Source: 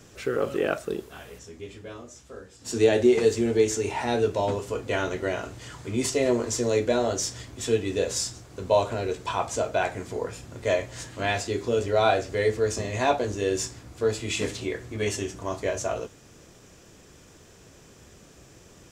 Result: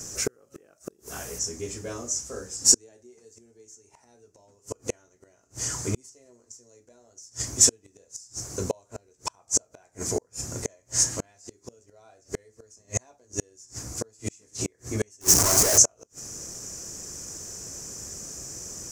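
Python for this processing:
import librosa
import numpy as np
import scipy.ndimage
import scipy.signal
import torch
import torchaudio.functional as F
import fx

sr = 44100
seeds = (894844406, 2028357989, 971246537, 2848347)

y = fx.clip_1bit(x, sr, at=(15.21, 15.78))
y = fx.gate_flip(y, sr, shuts_db=-20.0, range_db=-38)
y = fx.high_shelf_res(y, sr, hz=4600.0, db=10.0, q=3.0)
y = y * 10.0 ** (5.0 / 20.0)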